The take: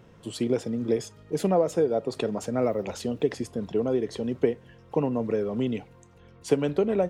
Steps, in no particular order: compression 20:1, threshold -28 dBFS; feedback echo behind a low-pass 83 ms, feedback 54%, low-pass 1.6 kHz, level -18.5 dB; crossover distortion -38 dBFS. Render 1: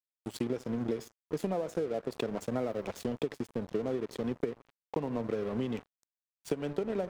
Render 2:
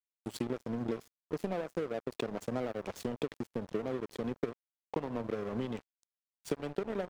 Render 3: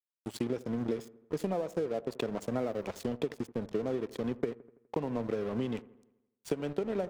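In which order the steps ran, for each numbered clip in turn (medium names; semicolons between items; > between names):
feedback echo behind a low-pass > crossover distortion > compression; compression > feedback echo behind a low-pass > crossover distortion; crossover distortion > compression > feedback echo behind a low-pass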